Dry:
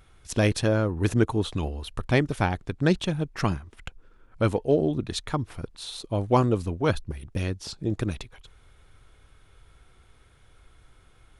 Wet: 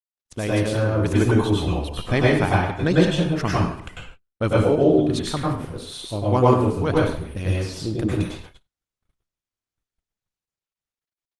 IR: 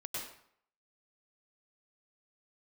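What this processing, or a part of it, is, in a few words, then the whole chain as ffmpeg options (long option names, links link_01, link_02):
speakerphone in a meeting room: -filter_complex "[1:a]atrim=start_sample=2205[link_01];[0:a][link_01]afir=irnorm=-1:irlink=0,dynaudnorm=framelen=140:gausssize=13:maxgain=6dB,agate=range=-49dB:threshold=-40dB:ratio=16:detection=peak" -ar 48000 -c:a libopus -b:a 24k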